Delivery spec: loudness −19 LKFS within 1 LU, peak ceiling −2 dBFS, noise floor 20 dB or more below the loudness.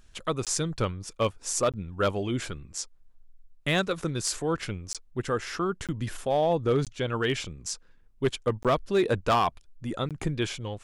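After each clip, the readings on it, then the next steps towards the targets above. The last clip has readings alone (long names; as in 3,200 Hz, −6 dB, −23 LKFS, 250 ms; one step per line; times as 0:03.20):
share of clipped samples 0.4%; peaks flattened at −17.0 dBFS; number of dropouts 7; longest dropout 17 ms; integrated loudness −29.0 LKFS; sample peak −17.0 dBFS; target loudness −19.0 LKFS
→ clipped peaks rebuilt −17 dBFS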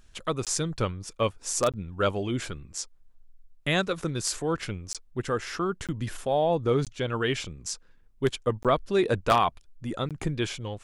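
share of clipped samples 0.0%; number of dropouts 7; longest dropout 17 ms
→ repair the gap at 0:00.45/0:01.72/0:04.93/0:05.87/0:06.85/0:08.63/0:10.09, 17 ms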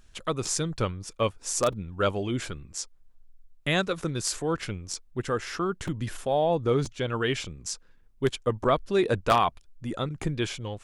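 number of dropouts 0; integrated loudness −28.5 LKFS; sample peak −8.0 dBFS; target loudness −19.0 LKFS
→ level +9.5 dB
brickwall limiter −2 dBFS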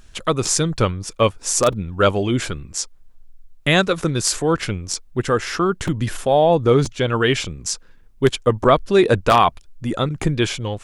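integrated loudness −19.5 LKFS; sample peak −2.0 dBFS; background noise floor −47 dBFS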